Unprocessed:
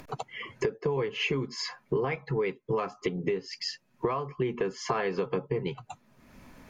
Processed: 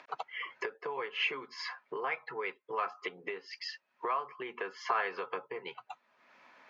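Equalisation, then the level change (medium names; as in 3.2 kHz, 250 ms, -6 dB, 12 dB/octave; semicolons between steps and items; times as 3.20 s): high-pass 870 Hz 12 dB/octave; dynamic bell 1.4 kHz, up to +4 dB, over -53 dBFS, Q 3; distance through air 220 m; +2.0 dB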